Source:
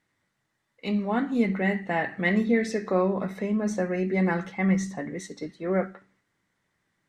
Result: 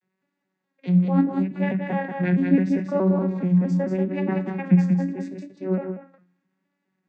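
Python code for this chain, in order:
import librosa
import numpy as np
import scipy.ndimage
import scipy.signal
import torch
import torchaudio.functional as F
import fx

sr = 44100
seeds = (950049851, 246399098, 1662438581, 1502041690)

y = fx.vocoder_arp(x, sr, chord='bare fifth', root=54, every_ms=214)
y = fx.vibrato(y, sr, rate_hz=0.78, depth_cents=54.0)
y = y + 10.0 ** (-5.0 / 20.0) * np.pad(y, (int(188 * sr / 1000.0), 0))[:len(y)]
y = fx.end_taper(y, sr, db_per_s=150.0)
y = F.gain(torch.from_numpy(y), 5.0).numpy()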